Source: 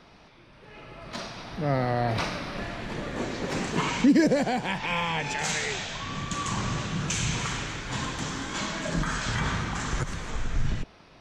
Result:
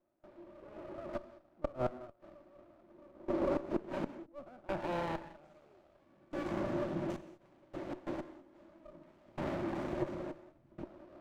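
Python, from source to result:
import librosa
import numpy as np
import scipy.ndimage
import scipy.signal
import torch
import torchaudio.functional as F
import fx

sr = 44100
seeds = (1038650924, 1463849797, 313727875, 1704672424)

y = fx.over_compress(x, sr, threshold_db=-28.0, ratio=-0.5, at=(1.65, 2.35))
y = fx.step_gate(y, sr, bpm=64, pattern='.xxxx..xx....', floor_db=-24.0, edge_ms=4.5)
y = fx.gate_flip(y, sr, shuts_db=-23.0, range_db=-38, at=(7.16, 8.07))
y = fx.double_bandpass(y, sr, hz=450.0, octaves=0.72)
y = fx.gate_flip(y, sr, shuts_db=-29.0, range_db=-34)
y = fx.rev_gated(y, sr, seeds[0], gate_ms=230, shape='flat', drr_db=11.5)
y = fx.running_max(y, sr, window=17)
y = y * 10.0 ** (8.0 / 20.0)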